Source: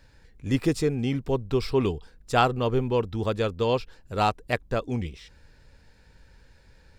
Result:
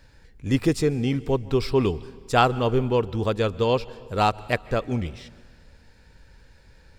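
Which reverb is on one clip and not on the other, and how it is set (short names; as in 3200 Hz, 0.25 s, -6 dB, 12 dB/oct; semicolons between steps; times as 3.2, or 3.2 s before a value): plate-style reverb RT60 1.7 s, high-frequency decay 0.9×, pre-delay 0.12 s, DRR 19.5 dB; gain +2.5 dB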